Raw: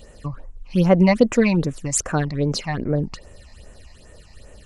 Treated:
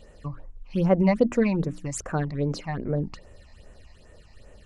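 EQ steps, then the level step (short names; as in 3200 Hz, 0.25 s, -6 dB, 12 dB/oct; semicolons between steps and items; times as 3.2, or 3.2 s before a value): notches 60/120/180/240/300 Hz; dynamic EQ 3600 Hz, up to -5 dB, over -38 dBFS, Q 0.7; high shelf 5900 Hz -10 dB; -4.5 dB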